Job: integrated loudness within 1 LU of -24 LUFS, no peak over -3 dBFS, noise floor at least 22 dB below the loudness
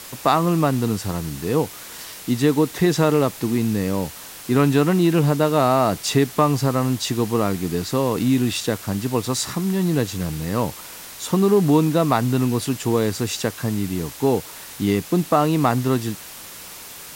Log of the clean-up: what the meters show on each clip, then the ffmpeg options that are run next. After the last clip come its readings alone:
noise floor -38 dBFS; noise floor target -43 dBFS; loudness -20.5 LUFS; peak -3.5 dBFS; loudness target -24.0 LUFS
-> -af "afftdn=nr=6:nf=-38"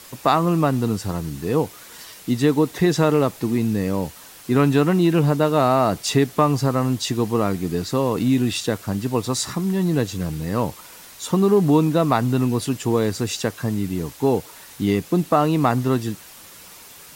noise floor -43 dBFS; loudness -21.0 LUFS; peak -3.5 dBFS; loudness target -24.0 LUFS
-> -af "volume=-3dB"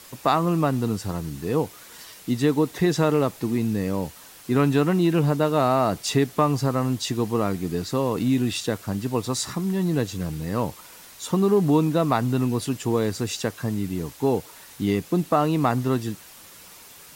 loudness -24.0 LUFS; peak -6.5 dBFS; noise floor -46 dBFS

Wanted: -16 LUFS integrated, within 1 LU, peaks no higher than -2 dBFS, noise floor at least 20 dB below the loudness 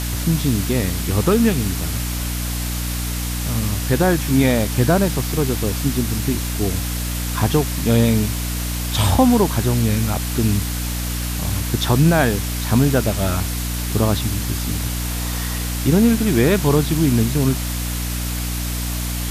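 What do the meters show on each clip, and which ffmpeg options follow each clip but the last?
hum 60 Hz; harmonics up to 300 Hz; hum level -22 dBFS; noise floor -24 dBFS; noise floor target -40 dBFS; loudness -19.5 LUFS; peak -4.0 dBFS; loudness target -16.0 LUFS
-> -af "bandreject=f=60:t=h:w=4,bandreject=f=120:t=h:w=4,bandreject=f=180:t=h:w=4,bandreject=f=240:t=h:w=4,bandreject=f=300:t=h:w=4"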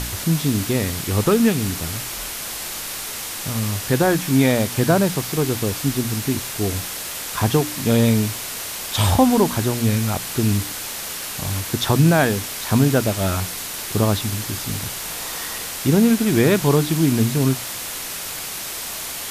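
hum none; noise floor -30 dBFS; noise floor target -41 dBFS
-> -af "afftdn=nr=11:nf=-30"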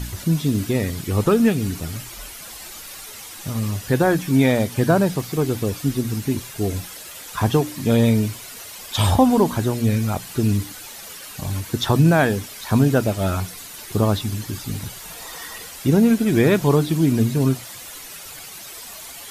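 noise floor -38 dBFS; noise floor target -41 dBFS
-> -af "afftdn=nr=6:nf=-38"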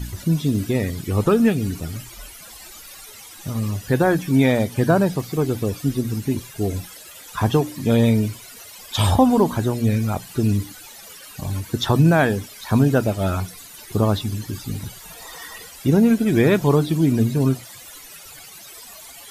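noise floor -42 dBFS; loudness -20.5 LUFS; peak -4.5 dBFS; loudness target -16.0 LUFS
-> -af "volume=4.5dB,alimiter=limit=-2dB:level=0:latency=1"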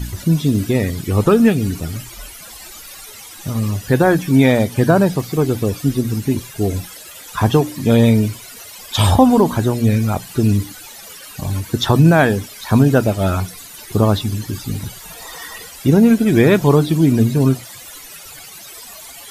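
loudness -16.0 LUFS; peak -2.0 dBFS; noise floor -37 dBFS

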